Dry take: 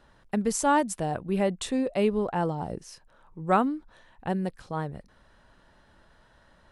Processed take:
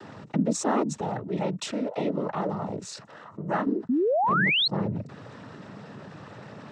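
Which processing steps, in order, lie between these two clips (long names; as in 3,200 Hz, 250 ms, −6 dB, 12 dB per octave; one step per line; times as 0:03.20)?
tilt shelving filter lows +6.5 dB, about 670 Hz
cochlear-implant simulation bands 12
0:01.01–0:03.67: low-shelf EQ 480 Hz −11.5 dB
0:03.89–0:04.68: sound drawn into the spectrogram rise 230–4,400 Hz −20 dBFS
envelope flattener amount 50%
level −5 dB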